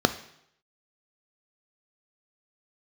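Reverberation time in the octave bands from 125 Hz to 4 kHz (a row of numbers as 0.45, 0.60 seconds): 0.80, 0.70, 0.75, 0.75, 0.75, 0.70 seconds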